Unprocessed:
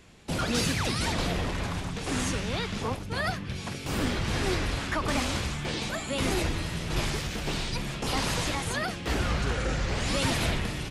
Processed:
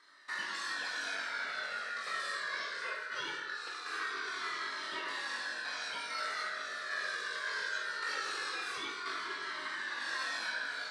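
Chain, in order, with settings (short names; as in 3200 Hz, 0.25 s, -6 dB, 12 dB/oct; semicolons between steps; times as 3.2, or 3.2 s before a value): compressor, threshold -29 dBFS, peak gain reduction 7.5 dB; ring modulator 1600 Hz; speaker cabinet 350–8500 Hz, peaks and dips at 400 Hz +7 dB, 780 Hz -7 dB, 1100 Hz +4 dB, 2800 Hz -4 dB, 4100 Hz +6 dB, 6700 Hz -7 dB; flutter echo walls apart 3.6 m, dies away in 0.24 s; reverb RT60 0.85 s, pre-delay 4 ms, DRR 1.5 dB; cascading flanger falling 0.21 Hz; gain -2 dB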